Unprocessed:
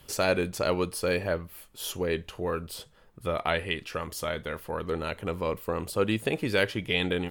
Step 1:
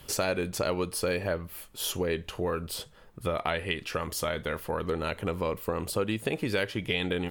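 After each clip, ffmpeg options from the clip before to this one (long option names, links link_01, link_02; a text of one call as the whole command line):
ffmpeg -i in.wav -af "acompressor=threshold=-31dB:ratio=3,volume=4dB" out.wav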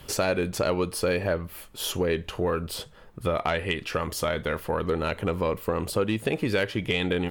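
ffmpeg -i in.wav -af "highshelf=frequency=4400:gain=-5,asoftclip=type=tanh:threshold=-16dB,volume=4.5dB" out.wav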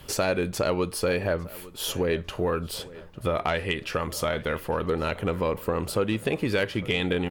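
ffmpeg -i in.wav -filter_complex "[0:a]asplit=2[link_01][link_02];[link_02]adelay=851,lowpass=frequency=3500:poles=1,volume=-19dB,asplit=2[link_03][link_04];[link_04]adelay=851,lowpass=frequency=3500:poles=1,volume=0.49,asplit=2[link_05][link_06];[link_06]adelay=851,lowpass=frequency=3500:poles=1,volume=0.49,asplit=2[link_07][link_08];[link_08]adelay=851,lowpass=frequency=3500:poles=1,volume=0.49[link_09];[link_01][link_03][link_05][link_07][link_09]amix=inputs=5:normalize=0" out.wav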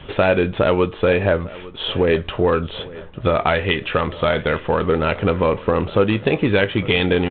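ffmpeg -i in.wav -filter_complex "[0:a]asplit=2[link_01][link_02];[link_02]adelay=20,volume=-13.5dB[link_03];[link_01][link_03]amix=inputs=2:normalize=0,volume=8.5dB" -ar 8000 -c:a adpcm_g726 -b:a 32k out.wav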